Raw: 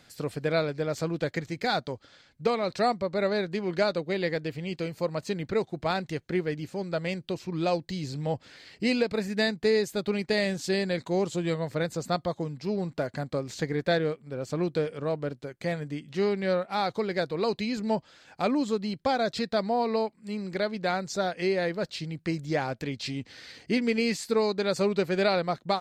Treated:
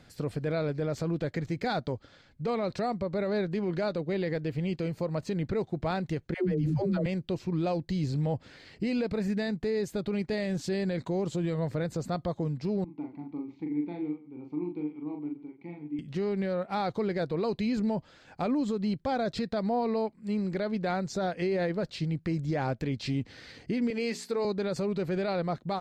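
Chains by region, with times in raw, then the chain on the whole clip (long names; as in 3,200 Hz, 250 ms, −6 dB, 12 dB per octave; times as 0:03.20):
0:06.34–0:07.06: low-shelf EQ 400 Hz +10 dB + all-pass dispersion lows, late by 143 ms, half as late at 350 Hz
0:12.84–0:15.99: formant filter u + high-frequency loss of the air 120 metres + multi-tap delay 40/85/139 ms −3.5/−19.5/−16.5 dB
0:23.90–0:24.45: high-pass filter 320 Hz + downward compressor 1.5 to 1, threshold −30 dBFS + mains-hum notches 60/120/180/240/300/360/420 Hz
whole clip: spectral tilt −2 dB per octave; brickwall limiter −22 dBFS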